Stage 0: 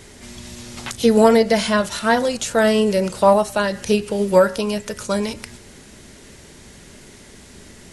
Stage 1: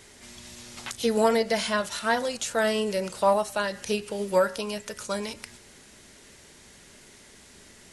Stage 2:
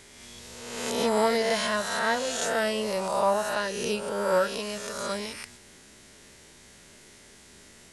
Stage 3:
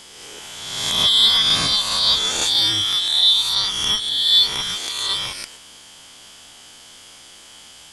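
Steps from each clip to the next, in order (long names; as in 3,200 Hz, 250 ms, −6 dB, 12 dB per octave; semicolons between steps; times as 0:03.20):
low-shelf EQ 440 Hz −8 dB; level −5.5 dB
peak hold with a rise ahead of every peak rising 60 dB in 1.26 s; level −3.5 dB
band-splitting scrambler in four parts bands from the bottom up 3412; level +8.5 dB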